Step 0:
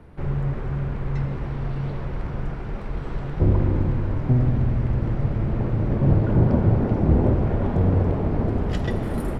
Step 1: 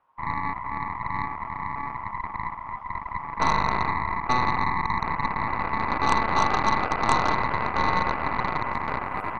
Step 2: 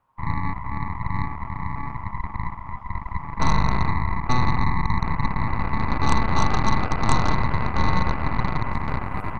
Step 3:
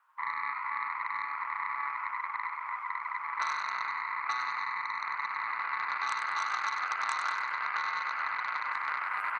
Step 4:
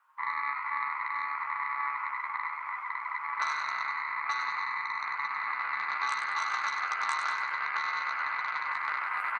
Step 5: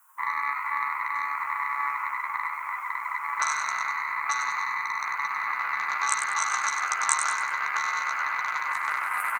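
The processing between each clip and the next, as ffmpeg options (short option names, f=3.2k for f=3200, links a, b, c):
-af "afwtdn=0.0631,aeval=exprs='val(0)*sin(2*PI*1000*n/s)':c=same,aeval=exprs='0.562*(cos(1*acos(clip(val(0)/0.562,-1,1)))-cos(1*PI/2))+0.2*(cos(4*acos(clip(val(0)/0.562,-1,1)))-cos(4*PI/2))+0.224*(cos(6*acos(clip(val(0)/0.562,-1,1)))-cos(6*PI/2))+0.178*(cos(8*acos(clip(val(0)/0.562,-1,1)))-cos(8*PI/2))':c=same,volume=-3.5dB"
-af "bass=f=250:g=14,treble=f=4k:g=6,volume=-2.5dB"
-filter_complex "[0:a]acompressor=threshold=-24dB:ratio=6,highpass=f=1.4k:t=q:w=2.9,asplit=2[a][b];[b]asplit=4[c][d][e][f];[c]adelay=97,afreqshift=140,volume=-7.5dB[g];[d]adelay=194,afreqshift=280,volume=-16.1dB[h];[e]adelay=291,afreqshift=420,volume=-24.8dB[i];[f]adelay=388,afreqshift=560,volume=-33.4dB[j];[g][h][i][j]amix=inputs=4:normalize=0[k];[a][k]amix=inputs=2:normalize=0"
-filter_complex "[0:a]asplit=2[a][b];[b]adelay=14,volume=-7dB[c];[a][c]amix=inputs=2:normalize=0"
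-af "aexciter=amount=10.1:drive=6.6:freq=6.4k,volume=4dB"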